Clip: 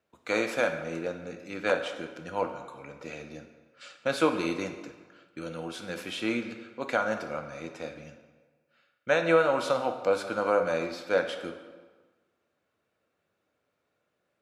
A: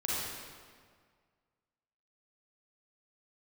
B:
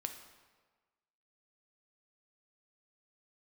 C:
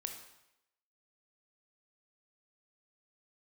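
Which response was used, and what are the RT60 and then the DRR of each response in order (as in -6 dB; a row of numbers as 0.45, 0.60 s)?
B; 1.8, 1.4, 0.85 s; -7.0, 5.5, 4.0 dB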